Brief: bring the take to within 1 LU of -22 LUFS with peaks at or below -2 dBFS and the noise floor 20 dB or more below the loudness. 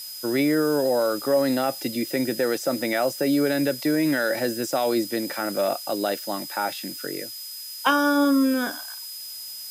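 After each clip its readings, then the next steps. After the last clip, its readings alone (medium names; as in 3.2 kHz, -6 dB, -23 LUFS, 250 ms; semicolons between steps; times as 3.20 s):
steady tone 5 kHz; tone level -37 dBFS; noise floor -37 dBFS; noise floor target -44 dBFS; loudness -24.0 LUFS; peak level -7.0 dBFS; loudness target -22.0 LUFS
-> band-stop 5 kHz, Q 30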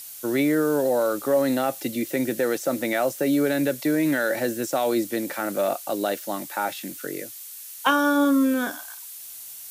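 steady tone not found; noise floor -40 dBFS; noise floor target -44 dBFS
-> noise print and reduce 6 dB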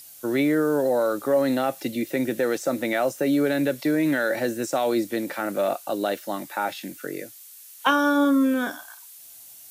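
noise floor -46 dBFS; loudness -24.0 LUFS; peak level -7.0 dBFS; loudness target -22.0 LUFS
-> trim +2 dB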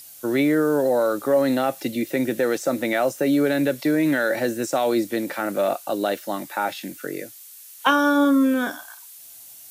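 loudness -22.0 LUFS; peak level -5.0 dBFS; noise floor -44 dBFS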